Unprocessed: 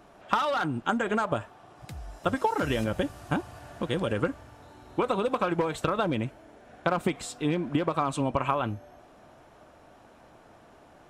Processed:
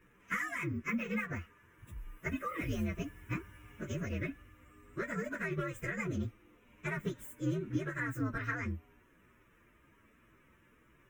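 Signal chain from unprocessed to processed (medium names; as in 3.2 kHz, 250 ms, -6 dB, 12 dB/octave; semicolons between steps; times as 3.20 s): frequency axis rescaled in octaves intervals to 125%; static phaser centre 1.9 kHz, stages 4; trim -3 dB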